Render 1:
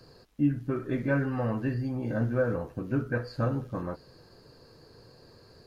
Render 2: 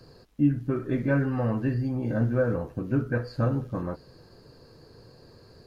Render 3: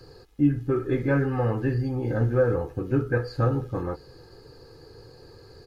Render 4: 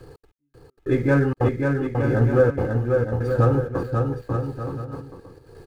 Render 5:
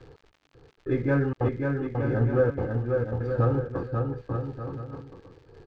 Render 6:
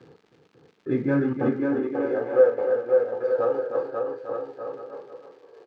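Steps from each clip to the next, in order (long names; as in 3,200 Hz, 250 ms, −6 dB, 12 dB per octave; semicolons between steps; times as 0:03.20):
low-shelf EQ 480 Hz +4 dB
comb filter 2.4 ms, depth 58%; level +2 dB
running median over 9 samples; gate pattern "xx.x.......xxxx" 192 BPM −60 dB; bouncing-ball delay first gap 540 ms, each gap 0.7×, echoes 5; level +4.5 dB
surface crackle 110 per second −35 dBFS; high-frequency loss of the air 170 metres; level −5 dB
flutter between parallel walls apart 6.7 metres, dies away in 0.21 s; high-pass filter sweep 190 Hz → 520 Hz, 0:01.23–0:02.26; single-tap delay 309 ms −7.5 dB; level −1.5 dB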